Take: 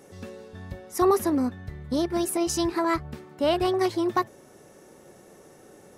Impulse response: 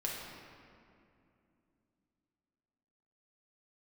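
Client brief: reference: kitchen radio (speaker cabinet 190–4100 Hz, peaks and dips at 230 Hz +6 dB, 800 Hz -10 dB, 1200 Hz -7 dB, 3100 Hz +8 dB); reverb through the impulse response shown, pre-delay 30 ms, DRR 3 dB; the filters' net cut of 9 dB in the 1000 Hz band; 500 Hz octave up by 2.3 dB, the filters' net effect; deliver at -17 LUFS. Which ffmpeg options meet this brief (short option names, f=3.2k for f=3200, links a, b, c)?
-filter_complex "[0:a]equalizer=f=500:t=o:g=6.5,equalizer=f=1k:t=o:g=-7,asplit=2[a][b];[1:a]atrim=start_sample=2205,adelay=30[c];[b][c]afir=irnorm=-1:irlink=0,volume=-6dB[d];[a][d]amix=inputs=2:normalize=0,highpass=190,equalizer=f=230:t=q:w=4:g=6,equalizer=f=800:t=q:w=4:g=-10,equalizer=f=1.2k:t=q:w=4:g=-7,equalizer=f=3.1k:t=q:w=4:g=8,lowpass=f=4.1k:w=0.5412,lowpass=f=4.1k:w=1.3066,volume=6dB"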